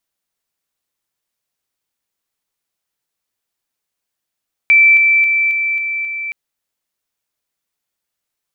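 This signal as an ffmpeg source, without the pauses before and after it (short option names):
-f lavfi -i "aevalsrc='pow(10,(-5.5-3*floor(t/0.27))/20)*sin(2*PI*2330*t)':d=1.62:s=44100"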